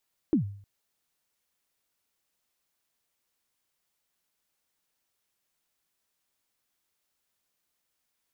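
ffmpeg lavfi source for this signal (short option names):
-f lavfi -i "aevalsrc='0.141*pow(10,-3*t/0.54)*sin(2*PI*(350*0.11/log(100/350)*(exp(log(100/350)*min(t,0.11)/0.11)-1)+100*max(t-0.11,0)))':d=0.31:s=44100"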